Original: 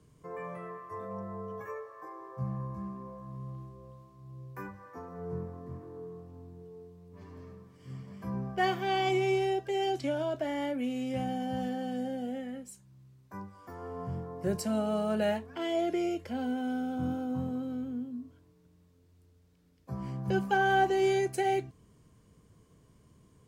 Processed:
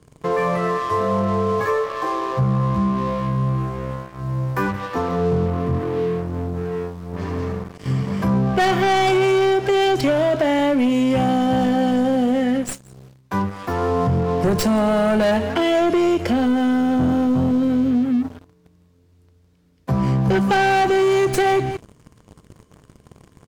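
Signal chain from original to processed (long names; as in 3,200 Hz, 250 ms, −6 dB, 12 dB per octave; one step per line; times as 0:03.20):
stylus tracing distortion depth 0.098 ms
on a send: single-tap delay 172 ms −20.5 dB
on the sum: leveller curve on the samples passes 3
downward compressor, threshold −26 dBFS, peak gain reduction 7 dB
in parallel at −2 dB: brickwall limiter −31 dBFS, peak gain reduction 10 dB
on the sum: high-shelf EQ 9,000 Hz −5.5 dB
level +8 dB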